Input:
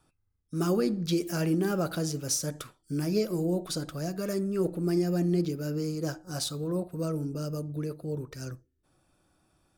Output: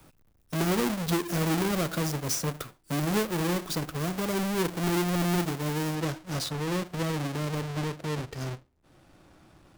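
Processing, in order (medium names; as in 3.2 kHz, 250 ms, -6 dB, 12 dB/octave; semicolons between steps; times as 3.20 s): square wave that keeps the level; treble shelf 10 kHz +5.5 dB, from 5.95 s -5.5 dB, from 7.62 s -11.5 dB; three bands compressed up and down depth 40%; trim -3.5 dB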